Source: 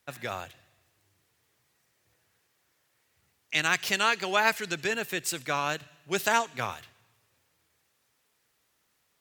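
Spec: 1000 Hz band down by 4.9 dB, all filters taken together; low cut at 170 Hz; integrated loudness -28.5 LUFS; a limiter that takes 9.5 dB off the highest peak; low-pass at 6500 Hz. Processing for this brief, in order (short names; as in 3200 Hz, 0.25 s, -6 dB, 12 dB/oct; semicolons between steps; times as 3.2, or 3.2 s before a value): HPF 170 Hz; LPF 6500 Hz; bell 1000 Hz -6.5 dB; gain +5.5 dB; limiter -13.5 dBFS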